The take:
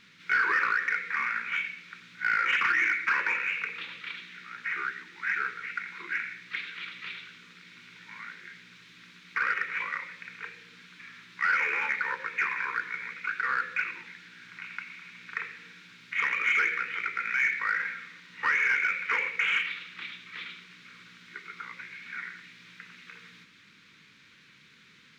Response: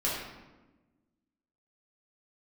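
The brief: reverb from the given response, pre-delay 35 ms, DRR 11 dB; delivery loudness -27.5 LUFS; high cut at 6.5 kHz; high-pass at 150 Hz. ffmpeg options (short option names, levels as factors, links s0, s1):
-filter_complex "[0:a]highpass=150,lowpass=6500,asplit=2[s0][s1];[1:a]atrim=start_sample=2205,adelay=35[s2];[s1][s2]afir=irnorm=-1:irlink=0,volume=0.106[s3];[s0][s3]amix=inputs=2:normalize=0,volume=1.12"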